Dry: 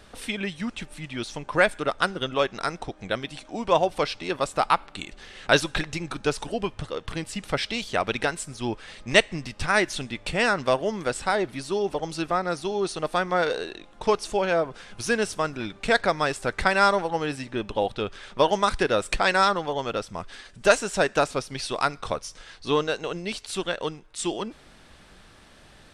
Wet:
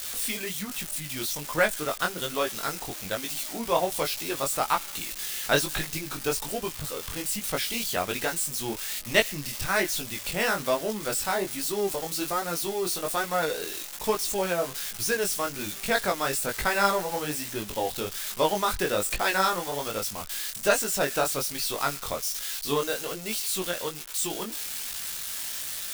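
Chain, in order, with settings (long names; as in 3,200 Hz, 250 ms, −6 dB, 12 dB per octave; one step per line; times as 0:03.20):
spike at every zero crossing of −19.5 dBFS
chorus effect 1.2 Hz, delay 18 ms, depth 4.8 ms
level −1 dB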